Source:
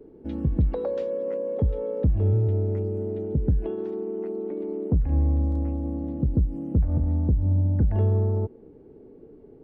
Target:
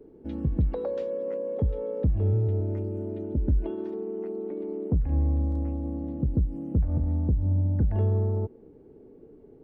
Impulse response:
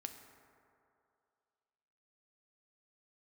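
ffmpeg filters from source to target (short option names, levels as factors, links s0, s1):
-filter_complex "[0:a]asettb=1/sr,asplit=3[s0][s1][s2];[s0]atrim=end=2.604[s3];[s1]atrim=start=2.6:end=3.94,asetpts=PTS-STARTPTS,afade=t=in:d=0.004:c=qsin,afade=t=out:st=1.336:d=0.004:c=qsin,aecho=1:1:3.3:0.55,atrim=end_sample=59094[s4];[s2]atrim=start=3.936[s5];[s3][s4]acrossfade=d=0.004:c1=hsin:c2=qsin[s6];[s6][s5]acrossfade=d=0.004:c1=qsin:c2=hsin,volume=0.75"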